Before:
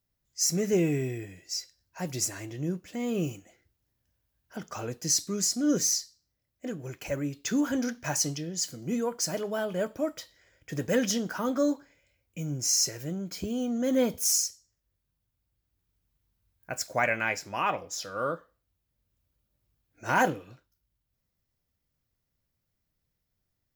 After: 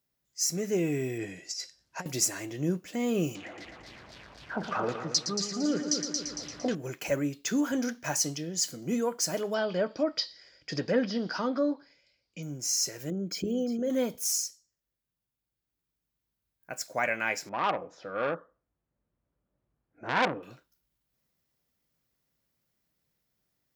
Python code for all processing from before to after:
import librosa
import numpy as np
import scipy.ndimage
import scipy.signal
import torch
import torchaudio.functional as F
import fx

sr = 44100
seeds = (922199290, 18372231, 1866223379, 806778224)

y = fx.chain(x, sr, fx.lowpass(hz=8600.0, slope=12),
    fx.over_compress(threshold_db=-37.0, ratio=-0.5), at=(1.18, 2.06))
y = fx.chain(y, sr, fx.zero_step(step_db=-42.5),
    fx.filter_lfo_lowpass(shape='saw_down', hz=3.9, low_hz=650.0, high_hz=5300.0, q=2.9),
    fx.echo_heads(ms=114, heads='first and second', feedback_pct=46, wet_db=-9.0), at=(3.35, 6.75))
y = fx.chain(y, sr, fx.env_lowpass_down(base_hz=1600.0, full_db=-23.5),
    fx.lowpass_res(hz=4800.0, q=8.9), at=(9.54, 12.43))
y = fx.chain(y, sr, fx.envelope_sharpen(power=1.5),
    fx.highpass(hz=58.0, slope=12),
    fx.echo_single(ms=352, db=-11.5), at=(13.1, 13.9))
y = fx.chain(y, sr, fx.lowpass(hz=1300.0, slope=12),
    fx.transformer_sat(knee_hz=2100.0), at=(17.49, 20.43))
y = scipy.signal.sosfilt(scipy.signal.butter(2, 68.0, 'highpass', fs=sr, output='sos'), y)
y = fx.peak_eq(y, sr, hz=87.0, db=-12.0, octaves=0.92)
y = fx.rider(y, sr, range_db=4, speed_s=0.5)